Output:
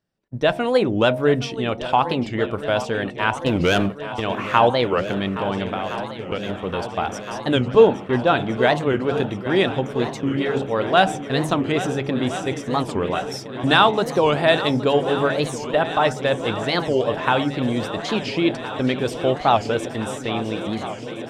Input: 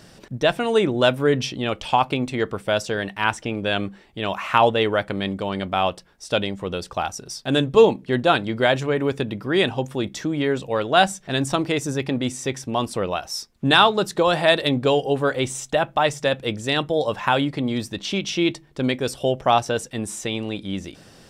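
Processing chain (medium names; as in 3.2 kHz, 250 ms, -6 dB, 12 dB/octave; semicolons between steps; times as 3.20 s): de-hum 69.46 Hz, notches 14; gate -32 dBFS, range -33 dB; treble shelf 3.8 kHz -8.5 dB; 3.47–4.20 s: waveshaping leveller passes 2; 5.72–6.49 s: compression, threshold -26 dBFS, peak gain reduction 9 dB; 7.75–8.55 s: distance through air 110 m; shuffle delay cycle 1367 ms, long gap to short 1.5:1, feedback 74%, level -14 dB; warped record 45 rpm, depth 250 cents; trim +1.5 dB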